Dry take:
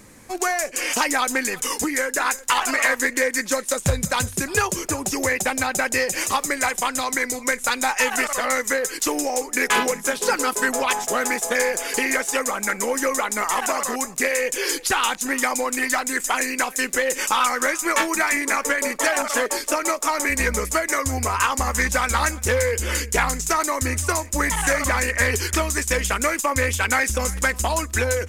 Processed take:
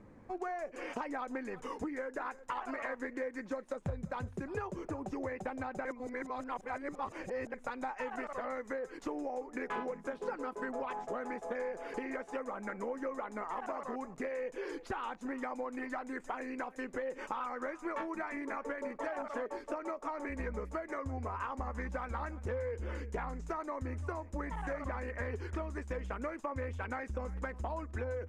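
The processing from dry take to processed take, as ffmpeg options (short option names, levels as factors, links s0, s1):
-filter_complex "[0:a]asplit=3[s0][s1][s2];[s0]atrim=end=5.852[s3];[s1]atrim=start=5.848:end=7.542,asetpts=PTS-STARTPTS,areverse[s4];[s2]atrim=start=7.538[s5];[s3][s4]acrossfade=d=0.004:c1=hsin:c2=hsin[s6];[s6][s5]acrossfade=d=0.004:c1=hsin:c2=hsin,lowpass=1000,aemphasis=mode=production:type=50kf,acompressor=threshold=0.0282:ratio=2.5,volume=0.447"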